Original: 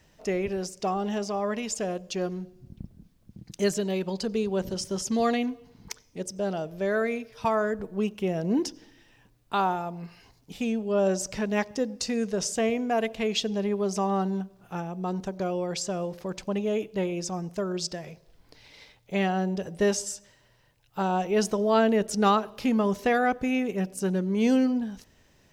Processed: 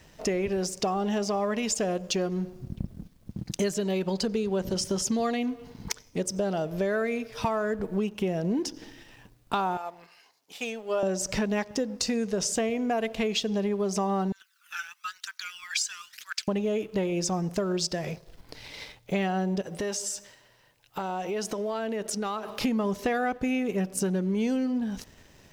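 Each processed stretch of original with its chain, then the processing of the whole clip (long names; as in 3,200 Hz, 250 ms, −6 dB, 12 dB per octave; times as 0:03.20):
0:09.77–0:11.03: high-pass filter 600 Hz + expander for the loud parts, over −39 dBFS
0:14.32–0:16.48: Butterworth high-pass 1,400 Hz 48 dB per octave + phase shifter 1 Hz, delay 1.4 ms, feedback 56%
0:19.61–0:22.61: low-shelf EQ 180 Hz −11.5 dB + downward compressor 5 to 1, threshold −39 dBFS
whole clip: downward compressor 6 to 1, threshold −35 dBFS; leveller curve on the samples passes 1; level +6 dB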